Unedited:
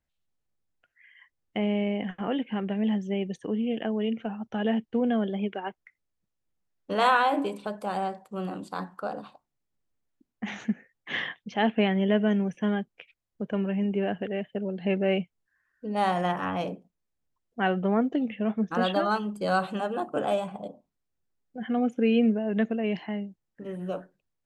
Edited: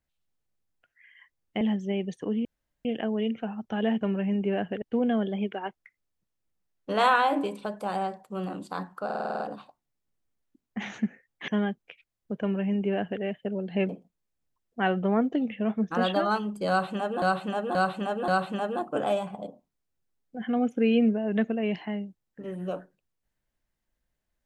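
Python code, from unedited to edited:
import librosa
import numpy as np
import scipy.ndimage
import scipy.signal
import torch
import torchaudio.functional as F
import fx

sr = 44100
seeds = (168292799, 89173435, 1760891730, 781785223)

y = fx.edit(x, sr, fx.cut(start_s=1.61, length_s=1.22),
    fx.insert_room_tone(at_s=3.67, length_s=0.4),
    fx.stutter(start_s=9.06, slice_s=0.05, count=8),
    fx.cut(start_s=11.14, length_s=1.44),
    fx.duplicate(start_s=13.51, length_s=0.81, to_s=4.83),
    fx.cut(start_s=14.99, length_s=1.7),
    fx.repeat(start_s=19.49, length_s=0.53, count=4), tone=tone)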